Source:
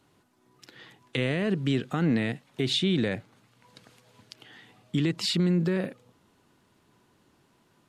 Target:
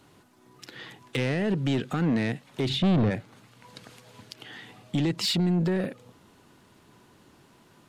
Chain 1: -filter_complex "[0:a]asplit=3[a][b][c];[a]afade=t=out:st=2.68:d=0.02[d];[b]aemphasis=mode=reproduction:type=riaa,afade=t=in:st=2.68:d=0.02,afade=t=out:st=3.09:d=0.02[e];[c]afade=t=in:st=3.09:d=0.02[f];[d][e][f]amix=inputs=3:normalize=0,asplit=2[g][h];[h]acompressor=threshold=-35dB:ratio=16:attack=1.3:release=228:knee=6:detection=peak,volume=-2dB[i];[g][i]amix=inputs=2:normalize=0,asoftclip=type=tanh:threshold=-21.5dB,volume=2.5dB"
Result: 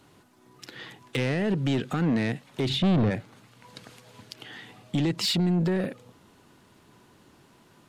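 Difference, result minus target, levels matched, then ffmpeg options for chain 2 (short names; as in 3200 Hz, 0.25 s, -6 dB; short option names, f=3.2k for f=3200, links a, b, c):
compressor: peak gain reduction -6.5 dB
-filter_complex "[0:a]asplit=3[a][b][c];[a]afade=t=out:st=2.68:d=0.02[d];[b]aemphasis=mode=reproduction:type=riaa,afade=t=in:st=2.68:d=0.02,afade=t=out:st=3.09:d=0.02[e];[c]afade=t=in:st=3.09:d=0.02[f];[d][e][f]amix=inputs=3:normalize=0,asplit=2[g][h];[h]acompressor=threshold=-42dB:ratio=16:attack=1.3:release=228:knee=6:detection=peak,volume=-2dB[i];[g][i]amix=inputs=2:normalize=0,asoftclip=type=tanh:threshold=-21.5dB,volume=2.5dB"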